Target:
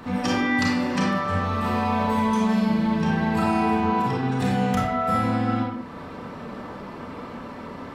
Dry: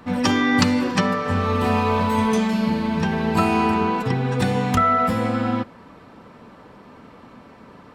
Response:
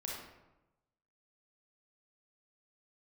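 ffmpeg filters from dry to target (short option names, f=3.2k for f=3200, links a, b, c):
-filter_complex "[0:a]acompressor=threshold=-39dB:ratio=2[a];[1:a]atrim=start_sample=2205,afade=t=out:st=0.28:d=0.01,atrim=end_sample=12789[b];[a][b]afir=irnorm=-1:irlink=0,volume=8.5dB"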